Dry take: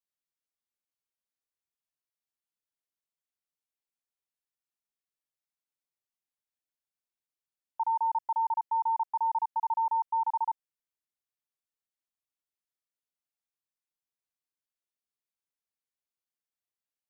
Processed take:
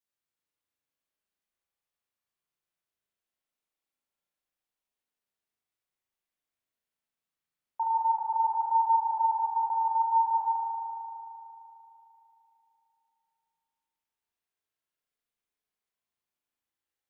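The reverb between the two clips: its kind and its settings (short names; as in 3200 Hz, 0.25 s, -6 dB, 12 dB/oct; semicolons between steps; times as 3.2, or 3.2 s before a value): spring tank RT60 3.2 s, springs 37 ms, chirp 30 ms, DRR -3.5 dB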